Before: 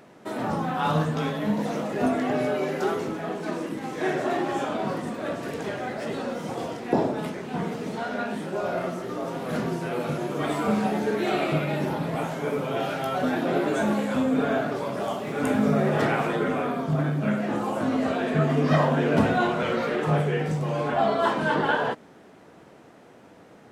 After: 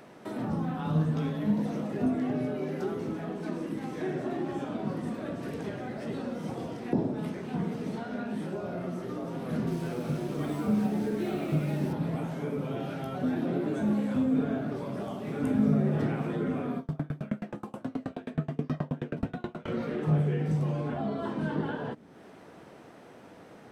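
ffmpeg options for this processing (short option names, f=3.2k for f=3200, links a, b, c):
-filter_complex "[0:a]asettb=1/sr,asplit=3[a][b][c];[a]atrim=end=9.674[d];[b]atrim=start=9.67:end=11.93,asetpts=PTS-STARTPTS,afade=t=in:d=0.004:c=qsin,afade=t=out:st=2.256:d=0.004:c=qsin,acrusher=bits=5:mix=0:aa=0.5[e];[c]atrim=start=11.926[f];[d][e]acrossfade=d=0.004:c1=hsin:c2=qsin[g];[g][f]acrossfade=d=0.004:c1=qsin:c2=hsin,asettb=1/sr,asplit=3[h][i][j];[h]atrim=end=16.784[k];[i]atrim=start=16.78:end=19.68,asetpts=PTS-STARTPTS,afade=t=in:d=0.004:c=qsin,afade=t=out:st=2.896:d=0.004:c=qsin,aeval=exprs='val(0)*pow(10,-33*if(lt(mod(9.4*n/s,1),2*abs(9.4)/1000),1-mod(9.4*n/s,1)/(2*abs(9.4)/1000),(mod(9.4*n/s,1)-2*abs(9.4)/1000)/(1-2*abs(9.4)/1000))/20)':c=same[l];[j]atrim=start=19.676[m];[k][l]acrossfade=d=0.004:c1=hsin:c2=qsin[n];[n][m]acrossfade=d=0.004:c1=qsin:c2=hsin,bandreject=f=7k:w=12,acrossover=split=330[o][p];[p]acompressor=threshold=-43dB:ratio=3[q];[o][q]amix=inputs=2:normalize=0"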